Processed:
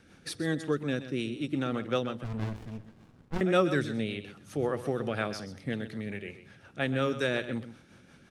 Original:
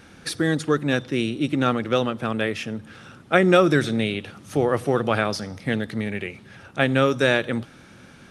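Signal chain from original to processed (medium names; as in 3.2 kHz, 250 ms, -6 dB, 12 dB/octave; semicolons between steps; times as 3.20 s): rotary cabinet horn 5.5 Hz; delay 128 ms -12.5 dB; 2.24–3.41 s: sliding maximum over 65 samples; trim -7.5 dB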